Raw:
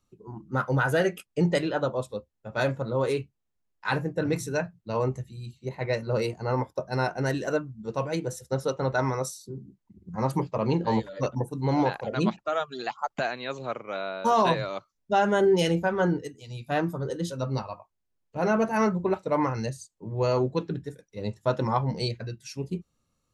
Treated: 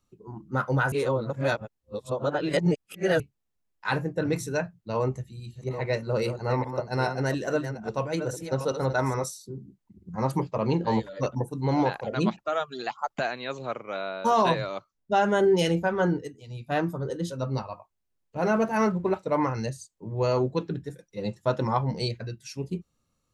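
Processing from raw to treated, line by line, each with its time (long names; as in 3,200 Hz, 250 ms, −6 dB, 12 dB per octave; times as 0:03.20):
0:00.92–0:03.20: reverse
0:04.98–0:09.24: delay that plays each chunk backwards 416 ms, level −8.5 dB
0:14.36–0:17.72: one half of a high-frequency compander decoder only
0:18.39–0:19.12: slack as between gear wheels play −51 dBFS
0:20.89–0:21.41: comb filter 5.8 ms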